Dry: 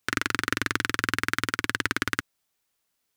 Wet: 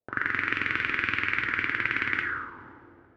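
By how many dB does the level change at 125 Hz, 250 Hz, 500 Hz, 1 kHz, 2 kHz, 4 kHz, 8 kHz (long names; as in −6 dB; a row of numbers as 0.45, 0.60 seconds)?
−5.0 dB, −5.5 dB, −5.0 dB, −2.0 dB, +2.0 dB, −7.0 dB, below −25 dB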